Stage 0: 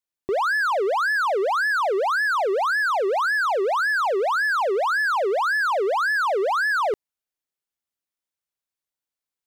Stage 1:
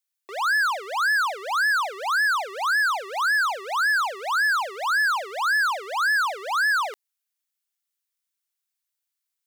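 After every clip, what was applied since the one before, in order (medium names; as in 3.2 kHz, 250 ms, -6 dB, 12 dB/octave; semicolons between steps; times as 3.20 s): high-pass 990 Hz 12 dB/octave; tilt EQ +2 dB/octave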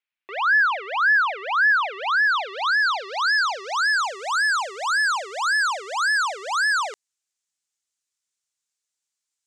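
low-pass sweep 2.5 kHz -> 7.3 kHz, 1.70–4.21 s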